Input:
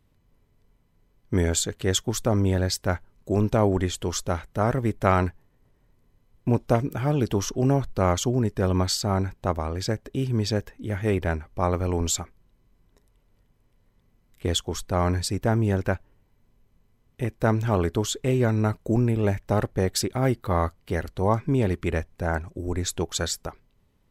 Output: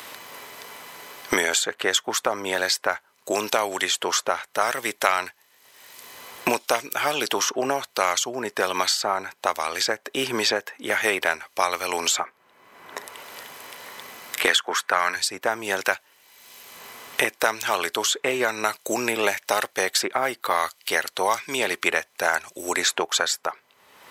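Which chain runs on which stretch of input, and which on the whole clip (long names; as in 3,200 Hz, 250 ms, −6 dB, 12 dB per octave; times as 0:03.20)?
0:14.46–0:15.16: high-pass filter 170 Hz 24 dB per octave + parametric band 1,600 Hz +11 dB 1 octave
whole clip: high-pass filter 890 Hz 12 dB per octave; multiband upward and downward compressor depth 100%; level +8.5 dB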